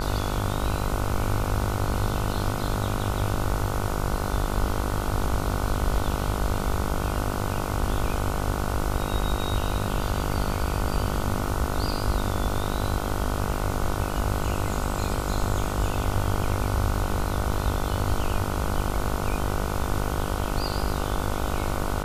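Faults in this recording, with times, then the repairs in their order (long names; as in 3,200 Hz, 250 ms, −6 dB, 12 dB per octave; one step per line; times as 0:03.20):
mains buzz 50 Hz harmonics 30 −30 dBFS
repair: hum removal 50 Hz, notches 30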